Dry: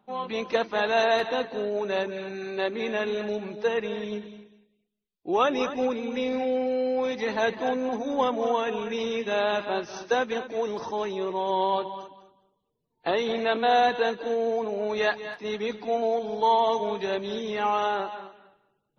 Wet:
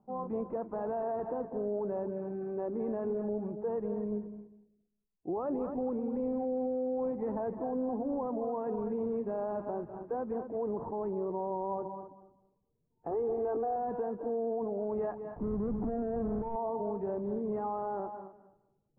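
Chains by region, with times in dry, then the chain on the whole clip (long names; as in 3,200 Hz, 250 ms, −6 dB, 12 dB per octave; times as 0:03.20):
0:13.11–0:13.76: high-shelf EQ 2,800 Hz −9.5 dB + comb filter 2.5 ms, depth 90%
0:15.36–0:16.56: each half-wave held at its own peak + bass and treble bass +10 dB, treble −8 dB + compressor whose output falls as the input rises −22 dBFS, ratio −0.5
whole clip: low-pass filter 1,000 Hz 24 dB per octave; low-shelf EQ 210 Hz +11.5 dB; brickwall limiter −21 dBFS; level −5.5 dB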